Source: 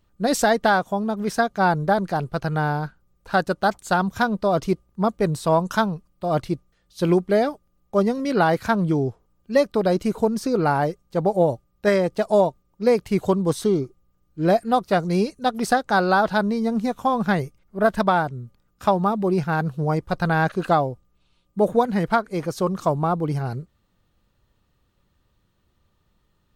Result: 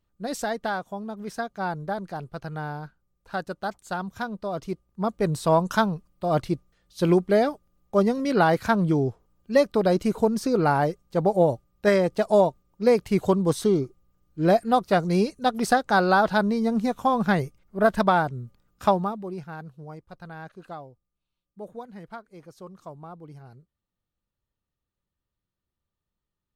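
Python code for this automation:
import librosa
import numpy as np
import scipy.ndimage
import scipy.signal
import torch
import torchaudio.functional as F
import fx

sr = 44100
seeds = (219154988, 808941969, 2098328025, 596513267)

y = fx.gain(x, sr, db=fx.line((4.64, -10.0), (5.39, -1.0), (18.91, -1.0), (19.22, -12.5), (20.06, -20.0)))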